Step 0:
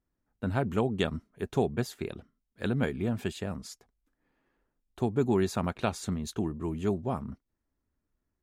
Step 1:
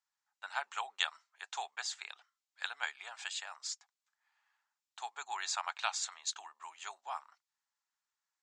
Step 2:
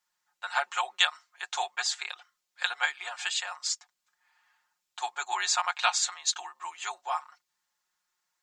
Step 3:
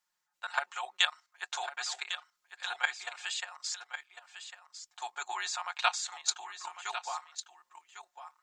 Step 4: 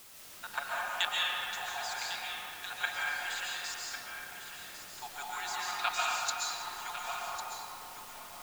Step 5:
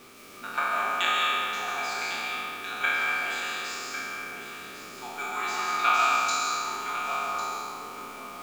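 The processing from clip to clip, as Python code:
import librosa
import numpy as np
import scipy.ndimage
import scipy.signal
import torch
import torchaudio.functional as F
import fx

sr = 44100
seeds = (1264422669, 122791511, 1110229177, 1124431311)

y1 = scipy.signal.sosfilt(scipy.signal.cheby1(4, 1.0, [810.0, 7600.0], 'bandpass', fs=sr, output='sos'), x)
y1 = fx.high_shelf(y1, sr, hz=2900.0, db=9.5)
y1 = y1 * librosa.db_to_amplitude(-1.5)
y2 = y1 + 0.88 * np.pad(y1, (int(5.6 * sr / 1000.0), 0))[:len(y1)]
y2 = y2 * librosa.db_to_amplitude(7.0)
y3 = fx.level_steps(y2, sr, step_db=12)
y3 = y3 + 10.0 ** (-10.5 / 20.0) * np.pad(y3, (int(1101 * sr / 1000.0), 0))[:len(y3)]
y4 = fx.quant_dither(y3, sr, seeds[0], bits=8, dither='triangular')
y4 = fx.rev_freeverb(y4, sr, rt60_s=3.1, hf_ratio=0.45, predelay_ms=95, drr_db=-5.5)
y4 = y4 * librosa.db_to_amplitude(-5.5)
y5 = fx.spec_trails(y4, sr, decay_s=1.77)
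y5 = fx.small_body(y5, sr, hz=(260.0, 390.0, 1200.0, 2300.0), ring_ms=30, db=16)
y5 = fx.backlash(y5, sr, play_db=-46.5)
y5 = y5 * librosa.db_to_amplitude(-2.0)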